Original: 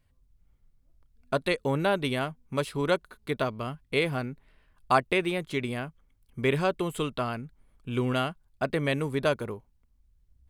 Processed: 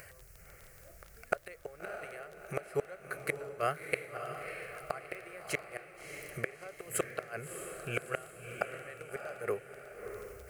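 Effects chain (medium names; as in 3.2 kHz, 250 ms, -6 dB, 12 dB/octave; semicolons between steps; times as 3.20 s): high-pass 200 Hz 6 dB/octave; inverted gate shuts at -21 dBFS, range -30 dB; bass shelf 260 Hz -11.5 dB; static phaser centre 960 Hz, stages 6; upward compressor, threshold -48 dBFS; crackle 14 per s -50 dBFS; echo that smears into a reverb 643 ms, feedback 43%, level -7 dB; trim +10.5 dB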